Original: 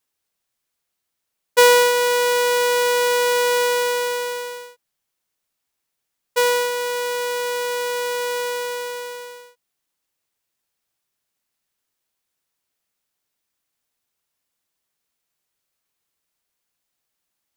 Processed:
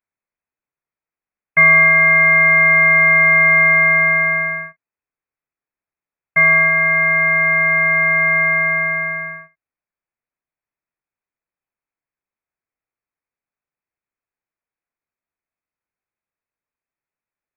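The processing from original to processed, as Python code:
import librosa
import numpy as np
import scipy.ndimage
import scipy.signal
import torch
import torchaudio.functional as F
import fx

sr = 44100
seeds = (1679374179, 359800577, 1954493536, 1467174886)

y = fx.leveller(x, sr, passes=3)
y = fx.freq_invert(y, sr, carrier_hz=2600)
y = y * librosa.db_to_amplitude(-1.0)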